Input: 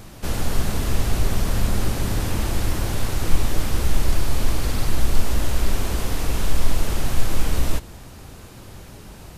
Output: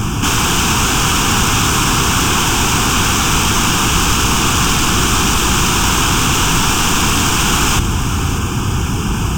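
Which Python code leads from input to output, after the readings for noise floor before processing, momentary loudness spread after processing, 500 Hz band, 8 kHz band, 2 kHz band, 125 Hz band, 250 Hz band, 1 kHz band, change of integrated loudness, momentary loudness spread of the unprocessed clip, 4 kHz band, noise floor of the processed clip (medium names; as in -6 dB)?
-41 dBFS, 5 LU, +8.5 dB, +19.0 dB, +17.5 dB, +8.5 dB, +13.0 dB, +18.5 dB, +12.5 dB, 17 LU, +19.0 dB, -17 dBFS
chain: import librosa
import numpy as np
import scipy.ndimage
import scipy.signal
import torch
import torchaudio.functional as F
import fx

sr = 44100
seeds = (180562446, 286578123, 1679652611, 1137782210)

p1 = fx.highpass(x, sr, hz=60.0, slope=6)
p2 = fx.notch(p1, sr, hz=3800.0, q=12.0)
p3 = fx.fold_sine(p2, sr, drive_db=19, ceiling_db=-12.0)
p4 = p2 + (p3 * 10.0 ** (2.5 / 20.0))
p5 = fx.fixed_phaser(p4, sr, hz=2900.0, stages=8)
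p6 = p5 + fx.echo_single(p5, sr, ms=594, db=-12.0, dry=0)
p7 = np.interp(np.arange(len(p6)), np.arange(len(p6))[::2], p6[::2])
y = p7 * 10.0 ** (2.0 / 20.0)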